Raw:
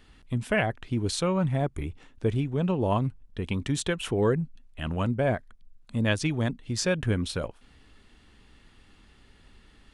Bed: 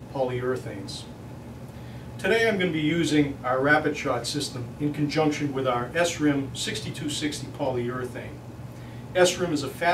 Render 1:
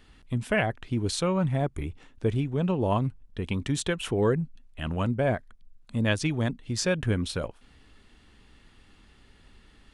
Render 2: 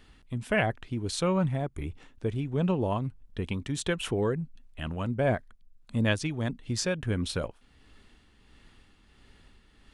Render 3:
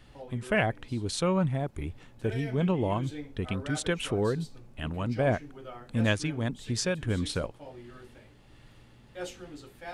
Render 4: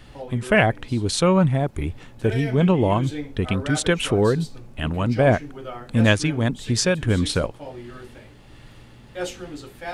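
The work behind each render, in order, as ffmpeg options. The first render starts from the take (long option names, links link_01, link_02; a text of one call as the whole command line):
ffmpeg -i in.wav -af anull out.wav
ffmpeg -i in.wav -af "tremolo=f=1.5:d=0.44" out.wav
ffmpeg -i in.wav -i bed.wav -filter_complex "[1:a]volume=-19dB[link_01];[0:a][link_01]amix=inputs=2:normalize=0" out.wav
ffmpeg -i in.wav -af "volume=9dB" out.wav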